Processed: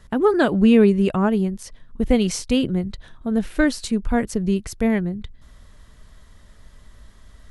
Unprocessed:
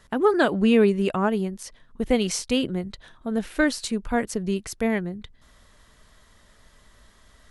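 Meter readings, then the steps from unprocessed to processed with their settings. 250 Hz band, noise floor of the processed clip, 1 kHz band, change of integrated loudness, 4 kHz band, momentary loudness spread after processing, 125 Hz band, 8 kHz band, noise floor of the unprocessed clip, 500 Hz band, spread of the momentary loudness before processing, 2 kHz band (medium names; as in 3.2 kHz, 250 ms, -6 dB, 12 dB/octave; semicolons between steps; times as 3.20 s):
+5.5 dB, -48 dBFS, +0.5 dB, +4.0 dB, 0.0 dB, 14 LU, +6.5 dB, 0.0 dB, -57 dBFS, +2.5 dB, 16 LU, 0.0 dB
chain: bass shelf 220 Hz +11 dB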